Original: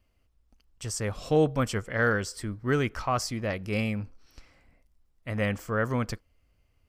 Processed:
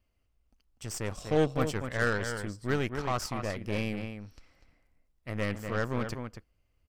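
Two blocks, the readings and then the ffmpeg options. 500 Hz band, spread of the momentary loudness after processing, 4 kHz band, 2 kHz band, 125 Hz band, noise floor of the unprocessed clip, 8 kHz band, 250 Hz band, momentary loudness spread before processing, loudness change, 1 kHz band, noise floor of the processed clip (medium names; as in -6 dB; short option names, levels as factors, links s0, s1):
-3.0 dB, 13 LU, -2.5 dB, -3.5 dB, -3.5 dB, -69 dBFS, -4.5 dB, -3.5 dB, 11 LU, -3.5 dB, -3.5 dB, -74 dBFS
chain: -filter_complex "[0:a]asplit=2[s0][s1];[s1]adelay=244.9,volume=0.447,highshelf=f=4000:g=-5.51[s2];[s0][s2]amix=inputs=2:normalize=0,aeval=exprs='0.237*(cos(1*acos(clip(val(0)/0.237,-1,1)))-cos(1*PI/2))+0.0266*(cos(3*acos(clip(val(0)/0.237,-1,1)))-cos(3*PI/2))+0.015*(cos(8*acos(clip(val(0)/0.237,-1,1)))-cos(8*PI/2))':c=same,volume=0.794"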